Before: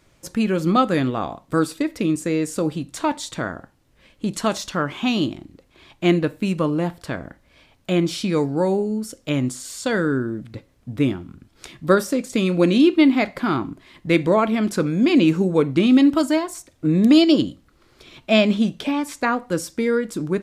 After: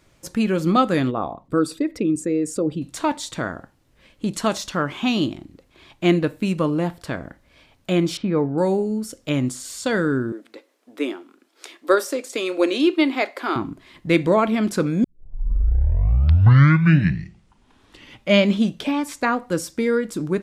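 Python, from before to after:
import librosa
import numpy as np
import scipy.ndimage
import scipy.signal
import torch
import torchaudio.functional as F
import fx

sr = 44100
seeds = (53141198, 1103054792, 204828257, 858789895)

y = fx.envelope_sharpen(x, sr, power=1.5, at=(1.1, 2.81), fade=0.02)
y = fx.lowpass(y, sr, hz=1600.0, slope=12, at=(8.17, 8.58))
y = fx.cheby2_highpass(y, sr, hz=160.0, order=4, stop_db=40, at=(10.32, 13.56))
y = fx.edit(y, sr, fx.tape_start(start_s=15.04, length_s=3.57), tone=tone)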